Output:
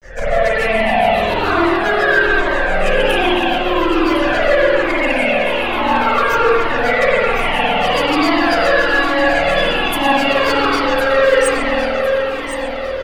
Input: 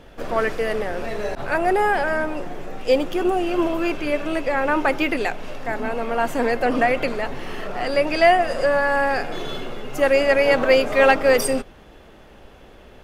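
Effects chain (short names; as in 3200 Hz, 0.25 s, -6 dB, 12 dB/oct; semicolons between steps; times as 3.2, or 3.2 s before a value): moving spectral ripple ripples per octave 0.55, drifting +0.45 Hz, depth 18 dB; low shelf 470 Hz -9 dB; compressor 4:1, threshold -24 dBFS, peak gain reduction 14 dB; grains 0.139 s, grains 7.2/s, spray 26 ms, pitch spread up and down by 0 st; hard clip -27.5 dBFS, distortion -10 dB; feedback echo 1.058 s, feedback 39%, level -9 dB; spring tank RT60 3.1 s, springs 50 ms, chirp 45 ms, DRR -9.5 dB; maximiser +13.5 dB; cascading flanger falling 1.2 Hz; gain +1 dB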